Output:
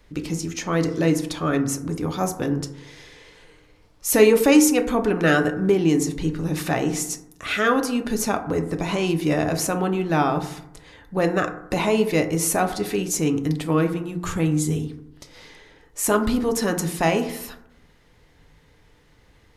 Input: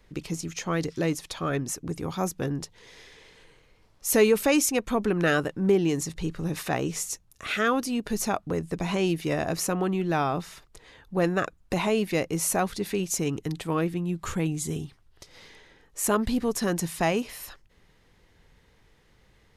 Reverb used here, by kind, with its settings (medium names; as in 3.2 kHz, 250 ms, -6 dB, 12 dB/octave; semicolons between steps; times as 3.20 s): FDN reverb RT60 0.78 s, low-frequency decay 1.2×, high-frequency decay 0.35×, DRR 5.5 dB; trim +3.5 dB